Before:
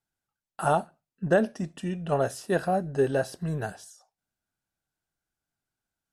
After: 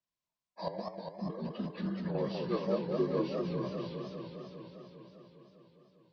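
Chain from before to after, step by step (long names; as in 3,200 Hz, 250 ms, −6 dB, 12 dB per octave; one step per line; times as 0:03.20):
partials spread apart or drawn together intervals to 79%
0:00.68–0:02.15: compressor whose output falls as the input rises −31 dBFS, ratio −1
feedback echo with a swinging delay time 201 ms, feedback 76%, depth 208 cents, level −4.5 dB
level −7 dB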